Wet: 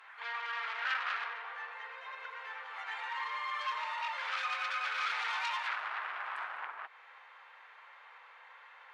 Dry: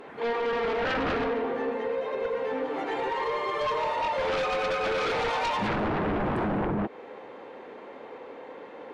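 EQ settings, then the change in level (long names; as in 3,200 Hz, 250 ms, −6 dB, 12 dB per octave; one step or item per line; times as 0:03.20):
high-pass filter 1,200 Hz 24 dB per octave
high-shelf EQ 3,200 Hz −8 dB
0.0 dB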